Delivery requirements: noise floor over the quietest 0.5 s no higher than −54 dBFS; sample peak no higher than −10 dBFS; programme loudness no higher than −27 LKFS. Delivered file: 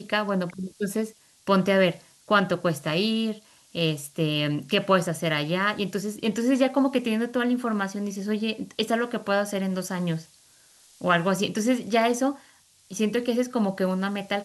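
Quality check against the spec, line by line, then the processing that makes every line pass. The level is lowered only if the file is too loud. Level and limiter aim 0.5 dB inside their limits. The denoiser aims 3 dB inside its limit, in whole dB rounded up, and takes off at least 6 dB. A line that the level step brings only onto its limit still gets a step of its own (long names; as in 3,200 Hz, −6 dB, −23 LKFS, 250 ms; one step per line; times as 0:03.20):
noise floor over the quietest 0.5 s −57 dBFS: in spec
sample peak −7.5 dBFS: out of spec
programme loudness −25.5 LKFS: out of spec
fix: level −2 dB
brickwall limiter −10.5 dBFS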